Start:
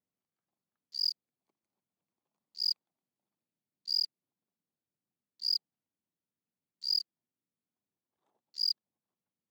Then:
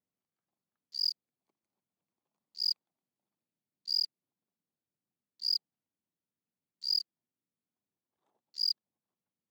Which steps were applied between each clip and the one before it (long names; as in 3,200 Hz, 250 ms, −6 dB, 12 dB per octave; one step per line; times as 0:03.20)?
no processing that can be heard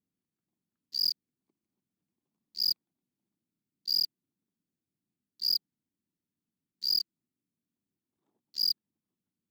leveller curve on the samples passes 2
low shelf with overshoot 420 Hz +9.5 dB, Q 1.5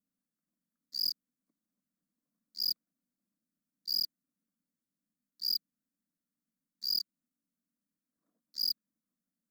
phaser with its sweep stopped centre 570 Hz, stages 8